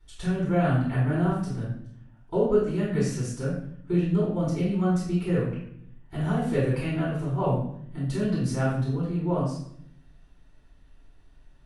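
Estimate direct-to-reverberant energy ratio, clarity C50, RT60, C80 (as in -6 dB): -10.0 dB, 1.5 dB, 0.65 s, 6.0 dB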